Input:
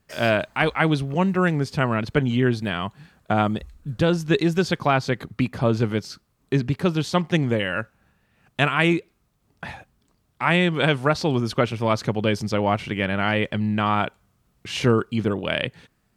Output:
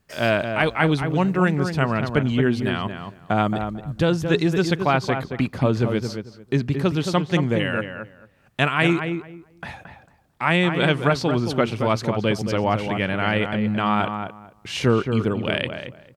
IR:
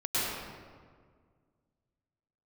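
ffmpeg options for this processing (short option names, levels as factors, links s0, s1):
-filter_complex "[0:a]asplit=2[s0][s1];[s1]adelay=223,lowpass=f=1800:p=1,volume=0.473,asplit=2[s2][s3];[s3]adelay=223,lowpass=f=1800:p=1,volume=0.2,asplit=2[s4][s5];[s5]adelay=223,lowpass=f=1800:p=1,volume=0.2[s6];[s0][s2][s4][s6]amix=inputs=4:normalize=0"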